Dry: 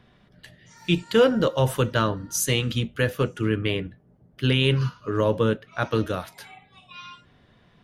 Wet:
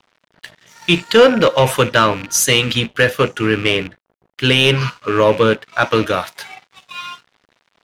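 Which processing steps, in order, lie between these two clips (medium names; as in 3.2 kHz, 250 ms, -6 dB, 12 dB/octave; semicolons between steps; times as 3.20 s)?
rattle on loud lows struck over -34 dBFS, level -31 dBFS; crossover distortion -52.5 dBFS; overdrive pedal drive 12 dB, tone 6.3 kHz, clips at -8 dBFS; trim +7.5 dB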